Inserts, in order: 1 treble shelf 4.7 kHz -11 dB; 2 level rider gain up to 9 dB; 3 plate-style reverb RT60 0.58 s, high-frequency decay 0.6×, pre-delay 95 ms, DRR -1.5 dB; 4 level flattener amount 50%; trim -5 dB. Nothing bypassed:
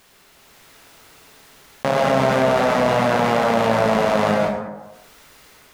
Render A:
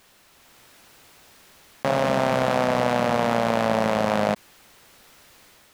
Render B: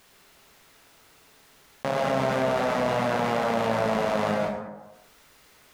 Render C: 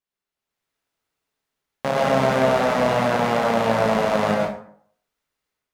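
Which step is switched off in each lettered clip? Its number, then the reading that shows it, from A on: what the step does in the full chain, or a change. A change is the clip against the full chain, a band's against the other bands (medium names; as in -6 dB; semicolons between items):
3, momentary loudness spread change -2 LU; 2, loudness change -7.5 LU; 4, loudness change -2.0 LU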